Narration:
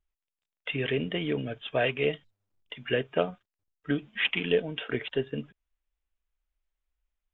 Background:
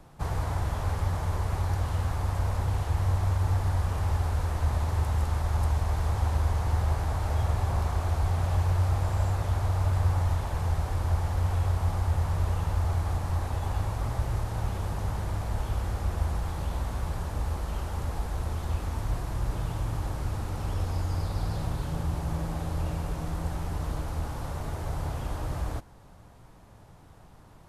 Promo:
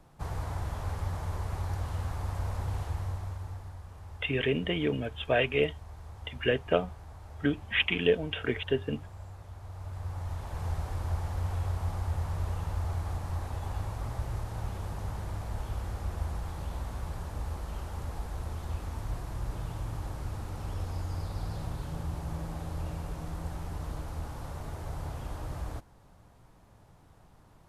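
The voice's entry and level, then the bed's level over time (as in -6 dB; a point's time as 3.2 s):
3.55 s, +0.5 dB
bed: 2.83 s -5.5 dB
3.81 s -18.5 dB
9.56 s -18.5 dB
10.67 s -5.5 dB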